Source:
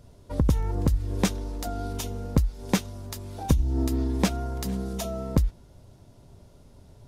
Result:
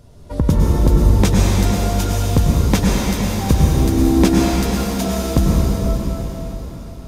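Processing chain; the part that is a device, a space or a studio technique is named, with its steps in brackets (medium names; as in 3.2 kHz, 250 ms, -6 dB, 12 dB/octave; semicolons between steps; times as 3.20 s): cathedral (reverberation RT60 4.8 s, pre-delay 94 ms, DRR -5 dB); trim +5.5 dB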